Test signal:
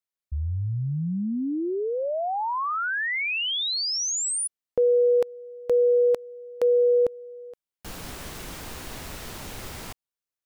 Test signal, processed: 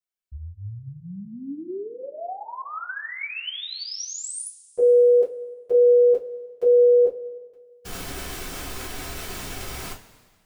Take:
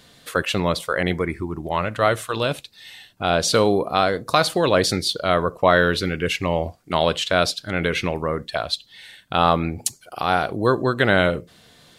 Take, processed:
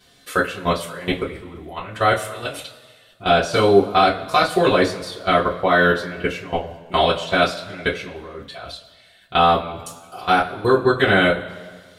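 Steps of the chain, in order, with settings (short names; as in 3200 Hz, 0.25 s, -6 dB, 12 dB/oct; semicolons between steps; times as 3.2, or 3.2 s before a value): level quantiser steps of 20 dB; two-slope reverb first 0.2 s, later 1.6 s, from -21 dB, DRR -8.5 dB; gain -2.5 dB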